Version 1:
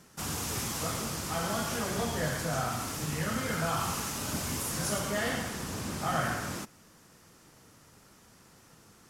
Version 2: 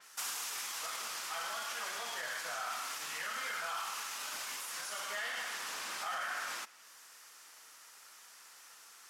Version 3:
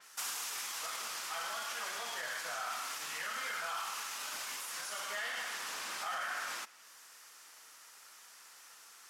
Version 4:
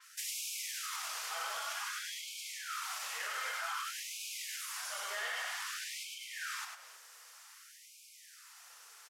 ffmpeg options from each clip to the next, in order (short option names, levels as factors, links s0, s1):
-af "highpass=1200,alimiter=level_in=2.99:limit=0.0631:level=0:latency=1:release=83,volume=0.335,adynamicequalizer=threshold=0.00112:dfrequency=5000:dqfactor=0.7:tfrequency=5000:tqfactor=0.7:attack=5:release=100:ratio=0.375:range=3.5:mode=cutabove:tftype=highshelf,volume=1.78"
-af anull
-filter_complex "[0:a]asplit=2[s0][s1];[s1]aecho=0:1:99|318:0.562|0.178[s2];[s0][s2]amix=inputs=2:normalize=0,afftfilt=real='re*gte(b*sr/1024,350*pow(2200/350,0.5+0.5*sin(2*PI*0.53*pts/sr)))':imag='im*gte(b*sr/1024,350*pow(2200/350,0.5+0.5*sin(2*PI*0.53*pts/sr)))':win_size=1024:overlap=0.75,volume=0.891"